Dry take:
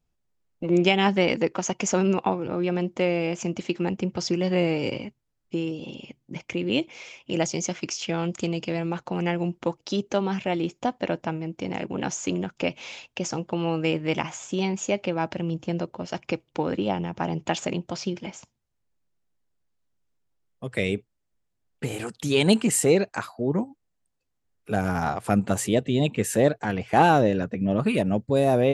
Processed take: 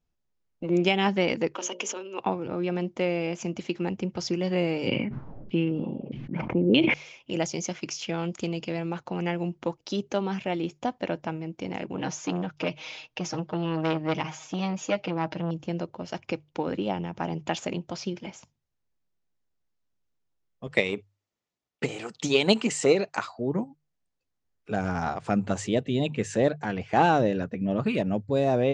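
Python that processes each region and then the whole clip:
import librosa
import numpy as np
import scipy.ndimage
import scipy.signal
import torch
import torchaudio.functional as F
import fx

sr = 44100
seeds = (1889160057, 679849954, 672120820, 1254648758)

y = fx.chain(x, sr, fx.hum_notches(base_hz=60, count=10),
    fx.over_compress(threshold_db=-28.0, ratio=-1.0),
    fx.cabinet(low_hz=320.0, low_slope=24, high_hz=8800.0, hz=(710.0, 1400.0, 2000.0, 3100.0, 4700.0), db=(-9, -3, -6, 7, -7)), at=(1.55, 2.2))
y = fx.chain(y, sr, fx.filter_lfo_lowpass(shape='saw_down', hz=1.6, low_hz=450.0, high_hz=3600.0, q=2.5),
    fx.peak_eq(hz=190.0, db=8.5, octaves=1.5),
    fx.sustainer(db_per_s=29.0), at=(4.87, 6.94))
y = fx.chain(y, sr, fx.lowpass(hz=6200.0, slope=24),
    fx.comb(ms=6.4, depth=0.89),
    fx.transformer_sat(knee_hz=1100.0), at=(11.97, 15.51))
y = fx.chain(y, sr, fx.notch(hz=1600.0, q=10.0),
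    fx.transient(attack_db=10, sustain_db=5),
    fx.highpass(hz=330.0, slope=6), at=(20.67, 23.39))
y = scipy.signal.sosfilt(scipy.signal.butter(6, 7100.0, 'lowpass', fs=sr, output='sos'), y)
y = fx.hum_notches(y, sr, base_hz=50, count=3)
y = y * 10.0 ** (-3.0 / 20.0)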